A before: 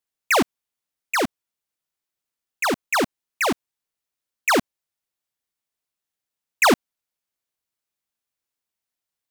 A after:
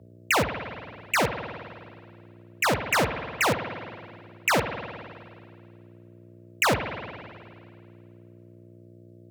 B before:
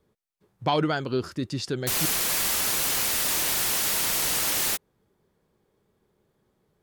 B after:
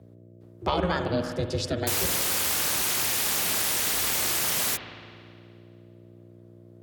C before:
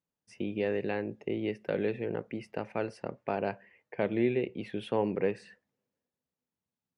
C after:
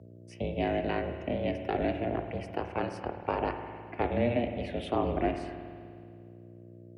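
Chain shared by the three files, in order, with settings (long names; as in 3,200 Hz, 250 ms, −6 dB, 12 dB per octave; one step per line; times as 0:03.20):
downward compressor, threshold −23 dBFS
ring modulation 180 Hz
hum with harmonics 60 Hz, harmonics 10, −54 dBFS −5 dB per octave
frequency shifter +46 Hz
spring reverb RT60 2.1 s, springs 52 ms, chirp 50 ms, DRR 7 dB
level +4 dB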